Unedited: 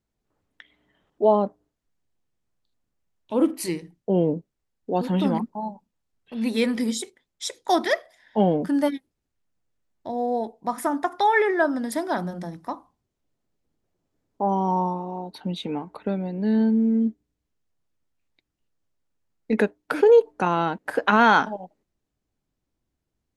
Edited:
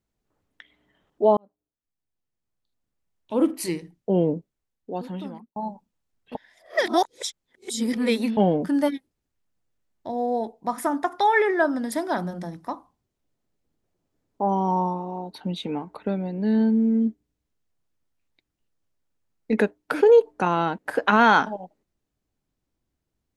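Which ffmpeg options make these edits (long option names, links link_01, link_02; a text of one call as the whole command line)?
ffmpeg -i in.wav -filter_complex "[0:a]asplit=5[link_01][link_02][link_03][link_04][link_05];[link_01]atrim=end=1.37,asetpts=PTS-STARTPTS,afade=type=out:start_time=1.366:duration=0.004:curve=hsin[link_06];[link_02]atrim=start=1.37:end=5.56,asetpts=PTS-STARTPTS,afade=type=in:duration=2.15,afade=type=out:start_time=2.87:duration=1.32[link_07];[link_03]atrim=start=5.56:end=6.352,asetpts=PTS-STARTPTS,afade=type=in:duration=0.004:curve=hsin[link_08];[link_04]atrim=start=6.348:end=8.372,asetpts=PTS-STARTPTS,areverse[link_09];[link_05]atrim=start=8.368[link_10];[link_06][link_07][link_08]concat=n=3:v=0:a=1[link_11];[link_11][link_09]acrossfade=duration=0.004:curve1=hsin:curve2=hsin[link_12];[link_12][link_10]acrossfade=duration=0.004:curve1=hsin:curve2=hsin" out.wav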